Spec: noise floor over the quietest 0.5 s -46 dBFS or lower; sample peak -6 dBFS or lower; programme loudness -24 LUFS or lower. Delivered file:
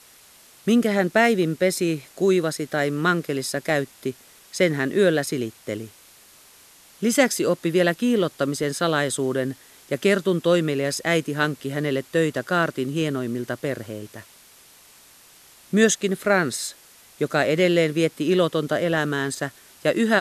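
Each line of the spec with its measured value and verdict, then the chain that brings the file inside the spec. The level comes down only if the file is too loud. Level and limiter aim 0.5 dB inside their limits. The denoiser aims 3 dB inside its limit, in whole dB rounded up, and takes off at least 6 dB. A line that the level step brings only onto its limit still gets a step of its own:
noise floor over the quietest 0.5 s -51 dBFS: pass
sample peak -4.5 dBFS: fail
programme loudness -22.5 LUFS: fail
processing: trim -2 dB

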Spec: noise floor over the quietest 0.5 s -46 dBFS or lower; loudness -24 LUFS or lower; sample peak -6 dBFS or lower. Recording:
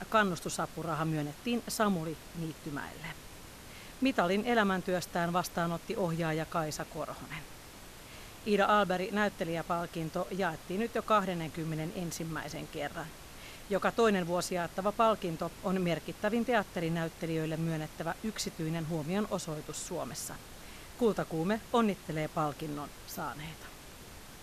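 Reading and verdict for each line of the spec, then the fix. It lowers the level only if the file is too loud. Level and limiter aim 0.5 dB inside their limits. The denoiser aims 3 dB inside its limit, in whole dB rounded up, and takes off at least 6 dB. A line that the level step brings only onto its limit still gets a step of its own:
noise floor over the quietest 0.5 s -50 dBFS: pass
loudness -33.5 LUFS: pass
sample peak -14.0 dBFS: pass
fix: none needed

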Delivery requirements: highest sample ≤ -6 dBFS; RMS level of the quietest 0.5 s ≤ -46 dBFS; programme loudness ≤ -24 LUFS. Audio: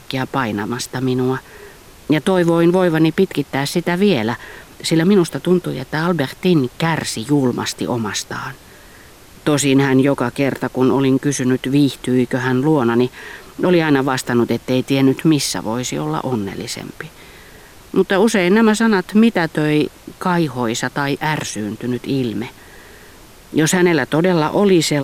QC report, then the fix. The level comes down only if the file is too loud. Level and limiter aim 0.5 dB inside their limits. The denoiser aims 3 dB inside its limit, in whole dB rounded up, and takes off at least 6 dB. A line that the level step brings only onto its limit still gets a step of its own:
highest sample -4.0 dBFS: fail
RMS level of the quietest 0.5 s -42 dBFS: fail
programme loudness -17.0 LUFS: fail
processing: trim -7.5 dB

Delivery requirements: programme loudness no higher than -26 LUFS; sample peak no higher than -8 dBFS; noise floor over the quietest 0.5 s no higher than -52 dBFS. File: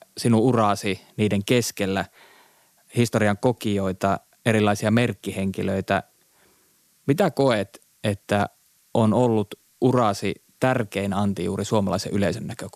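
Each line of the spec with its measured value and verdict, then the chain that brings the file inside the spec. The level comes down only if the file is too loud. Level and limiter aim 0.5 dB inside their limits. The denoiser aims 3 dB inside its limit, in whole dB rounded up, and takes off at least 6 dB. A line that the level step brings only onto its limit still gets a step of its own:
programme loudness -23.0 LUFS: fail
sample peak -6.5 dBFS: fail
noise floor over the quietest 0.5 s -61 dBFS: pass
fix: trim -3.5 dB

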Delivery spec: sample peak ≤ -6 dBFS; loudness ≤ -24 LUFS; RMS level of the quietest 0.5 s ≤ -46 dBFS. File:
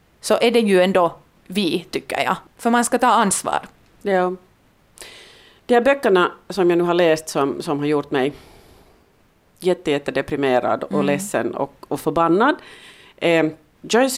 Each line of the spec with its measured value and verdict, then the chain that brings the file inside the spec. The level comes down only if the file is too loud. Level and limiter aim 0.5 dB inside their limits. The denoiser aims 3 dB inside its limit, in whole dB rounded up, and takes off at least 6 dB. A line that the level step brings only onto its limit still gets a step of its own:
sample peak -5.5 dBFS: fail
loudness -19.5 LUFS: fail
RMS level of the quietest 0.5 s -57 dBFS: pass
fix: trim -5 dB

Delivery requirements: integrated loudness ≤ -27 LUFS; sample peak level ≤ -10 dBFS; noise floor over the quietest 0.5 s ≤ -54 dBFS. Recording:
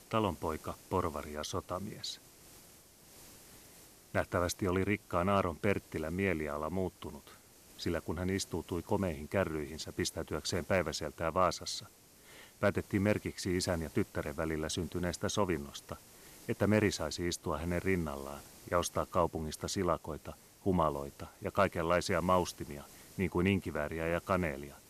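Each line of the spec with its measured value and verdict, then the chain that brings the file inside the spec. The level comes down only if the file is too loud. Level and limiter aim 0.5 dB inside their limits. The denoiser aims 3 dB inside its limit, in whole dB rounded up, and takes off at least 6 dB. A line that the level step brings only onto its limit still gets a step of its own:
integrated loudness -34.5 LUFS: pass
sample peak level -15.5 dBFS: pass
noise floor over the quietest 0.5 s -59 dBFS: pass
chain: none needed

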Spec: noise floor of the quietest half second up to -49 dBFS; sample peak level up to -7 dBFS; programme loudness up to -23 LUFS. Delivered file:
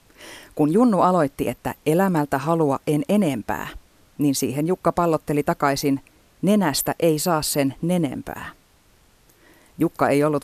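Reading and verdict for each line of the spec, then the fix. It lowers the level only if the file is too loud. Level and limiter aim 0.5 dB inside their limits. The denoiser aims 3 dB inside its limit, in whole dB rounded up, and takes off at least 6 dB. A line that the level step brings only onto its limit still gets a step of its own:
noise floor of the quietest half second -57 dBFS: pass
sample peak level -5.0 dBFS: fail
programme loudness -21.5 LUFS: fail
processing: trim -2 dB; peak limiter -7.5 dBFS

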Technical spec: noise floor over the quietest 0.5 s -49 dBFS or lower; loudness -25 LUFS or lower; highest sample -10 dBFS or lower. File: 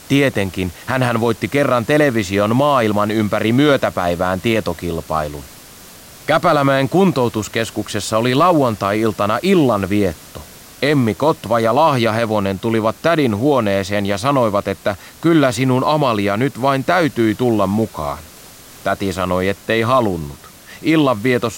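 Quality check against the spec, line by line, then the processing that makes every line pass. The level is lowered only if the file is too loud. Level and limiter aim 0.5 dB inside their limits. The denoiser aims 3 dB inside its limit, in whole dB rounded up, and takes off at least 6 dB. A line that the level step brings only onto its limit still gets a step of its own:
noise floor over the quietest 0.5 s -40 dBFS: fail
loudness -16.5 LUFS: fail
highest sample -3.5 dBFS: fail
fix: noise reduction 6 dB, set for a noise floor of -40 dBFS; trim -9 dB

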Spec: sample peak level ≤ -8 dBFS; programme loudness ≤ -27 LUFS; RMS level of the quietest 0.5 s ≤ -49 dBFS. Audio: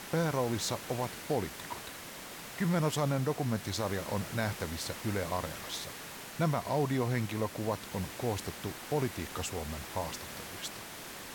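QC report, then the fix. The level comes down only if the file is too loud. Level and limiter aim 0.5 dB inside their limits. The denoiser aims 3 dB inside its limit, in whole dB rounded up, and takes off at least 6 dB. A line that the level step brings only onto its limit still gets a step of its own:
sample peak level -19.0 dBFS: pass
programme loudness -35.0 LUFS: pass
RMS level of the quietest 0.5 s -45 dBFS: fail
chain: noise reduction 7 dB, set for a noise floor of -45 dBFS

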